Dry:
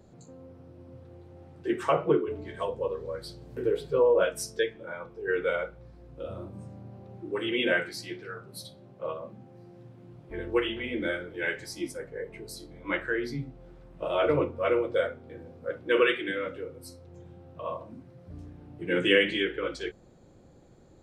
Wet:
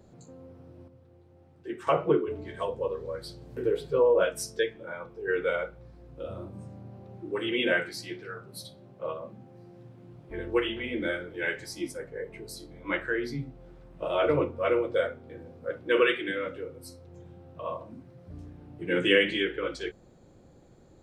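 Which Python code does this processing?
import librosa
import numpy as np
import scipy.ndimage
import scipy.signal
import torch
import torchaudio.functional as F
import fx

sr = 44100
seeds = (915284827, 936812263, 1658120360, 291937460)

y = fx.edit(x, sr, fx.clip_gain(start_s=0.88, length_s=0.99, db=-8.0), tone=tone)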